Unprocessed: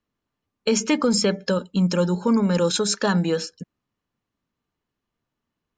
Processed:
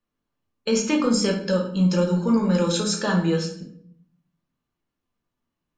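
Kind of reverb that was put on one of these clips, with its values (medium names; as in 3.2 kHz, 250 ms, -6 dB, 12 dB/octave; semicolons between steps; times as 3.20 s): simulated room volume 94 m³, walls mixed, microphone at 0.83 m; trim -4.5 dB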